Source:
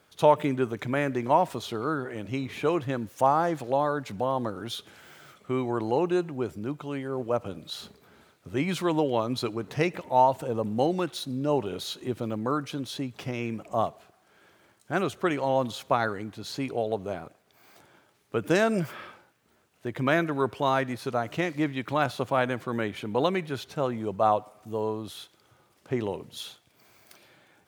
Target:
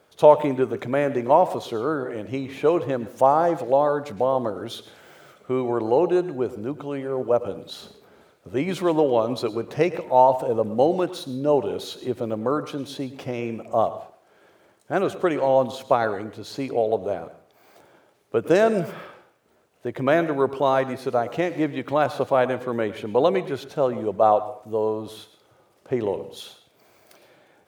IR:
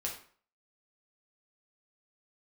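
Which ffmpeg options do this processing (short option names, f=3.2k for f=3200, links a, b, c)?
-filter_complex "[0:a]equalizer=f=530:t=o:w=1.5:g=9,asplit=2[a][b];[1:a]atrim=start_sample=2205,adelay=107[c];[b][c]afir=irnorm=-1:irlink=0,volume=-15.5dB[d];[a][d]amix=inputs=2:normalize=0,volume=-1dB"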